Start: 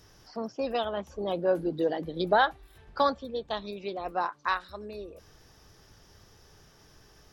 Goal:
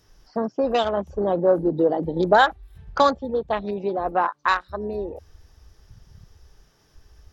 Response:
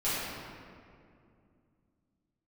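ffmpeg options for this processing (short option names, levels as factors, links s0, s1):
-filter_complex "[0:a]afwtdn=0.00891,asplit=2[s0][s1];[s1]acompressor=threshold=0.0141:ratio=6,volume=1.33[s2];[s0][s2]amix=inputs=2:normalize=0,volume=1.88"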